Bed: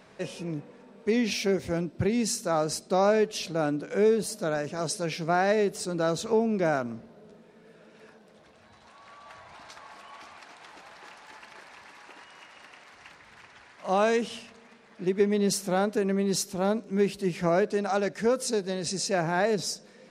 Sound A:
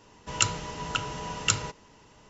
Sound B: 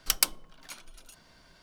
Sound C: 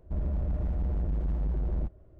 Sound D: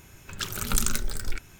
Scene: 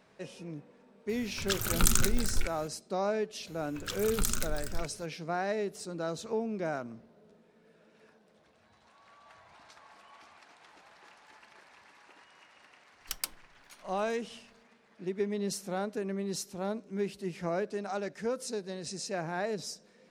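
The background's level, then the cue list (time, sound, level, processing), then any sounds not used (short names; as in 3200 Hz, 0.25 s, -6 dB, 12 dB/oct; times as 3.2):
bed -8.5 dB
1.09 add D
3.47 add D -6 dB
13.01 add B -11 dB
not used: A, C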